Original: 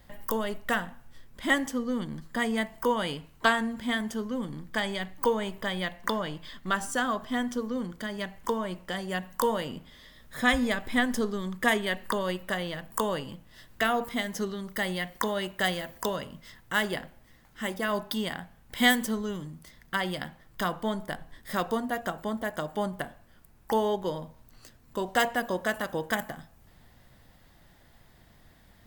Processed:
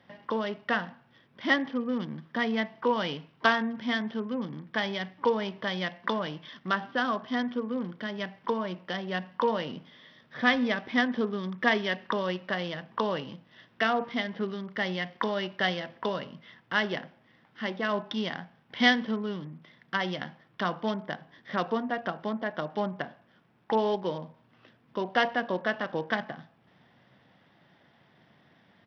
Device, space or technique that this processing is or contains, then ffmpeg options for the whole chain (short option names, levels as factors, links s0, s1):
Bluetooth headset: -af "highpass=f=130:w=0.5412,highpass=f=130:w=1.3066,aresample=8000,aresample=44100" -ar 44100 -c:a sbc -b:a 64k